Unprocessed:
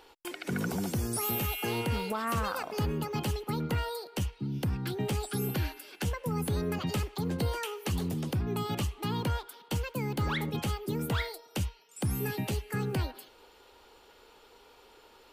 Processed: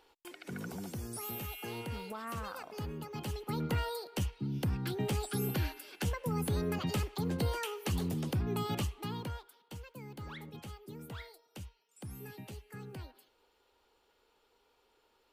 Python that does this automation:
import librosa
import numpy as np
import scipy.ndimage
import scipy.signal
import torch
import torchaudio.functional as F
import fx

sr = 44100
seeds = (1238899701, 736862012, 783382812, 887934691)

y = fx.gain(x, sr, db=fx.line((3.11, -9.5), (3.63, -2.0), (8.77, -2.0), (9.63, -14.5)))